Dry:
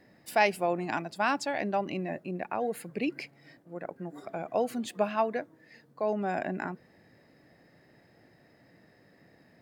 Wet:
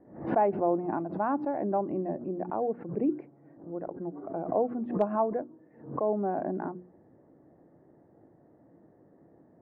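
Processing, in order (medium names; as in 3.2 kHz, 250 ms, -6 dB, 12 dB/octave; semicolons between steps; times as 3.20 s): low-pass 1.1 kHz 24 dB/octave; peaking EQ 330 Hz +7 dB 0.63 oct; hum notches 60/120/180/240/300/360 Hz; hard clipper -14.5 dBFS, distortion -41 dB; swell ahead of each attack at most 110 dB/s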